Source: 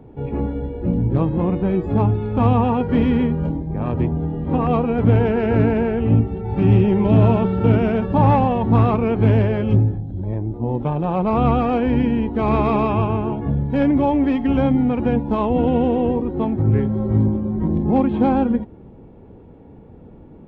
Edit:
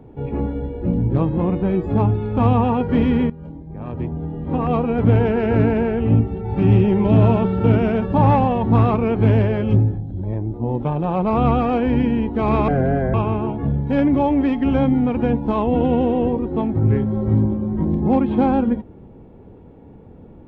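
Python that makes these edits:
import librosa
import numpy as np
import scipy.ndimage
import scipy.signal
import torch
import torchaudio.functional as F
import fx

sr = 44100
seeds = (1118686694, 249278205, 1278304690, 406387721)

y = fx.edit(x, sr, fx.fade_in_from(start_s=3.3, length_s=1.66, floor_db=-17.0),
    fx.speed_span(start_s=12.68, length_s=0.29, speed=0.63), tone=tone)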